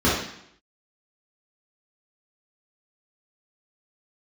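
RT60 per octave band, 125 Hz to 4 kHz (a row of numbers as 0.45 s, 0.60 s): 0.70 s, 0.75 s, 0.70 s, 0.70 s, 0.75 s, 0.70 s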